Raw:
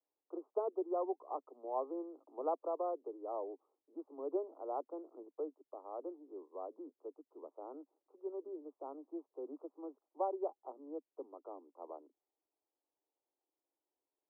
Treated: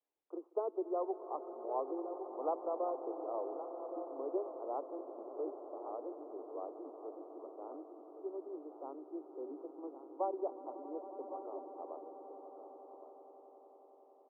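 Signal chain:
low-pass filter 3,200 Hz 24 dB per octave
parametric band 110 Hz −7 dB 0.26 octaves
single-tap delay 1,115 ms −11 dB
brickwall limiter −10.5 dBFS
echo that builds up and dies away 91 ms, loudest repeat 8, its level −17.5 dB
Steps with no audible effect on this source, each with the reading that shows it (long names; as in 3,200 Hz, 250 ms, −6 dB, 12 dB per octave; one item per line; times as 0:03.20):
low-pass filter 3,200 Hz: nothing at its input above 1,300 Hz
parametric band 110 Hz: nothing at its input below 240 Hz
brickwall limiter −10.5 dBFS: peak of its input −23.5 dBFS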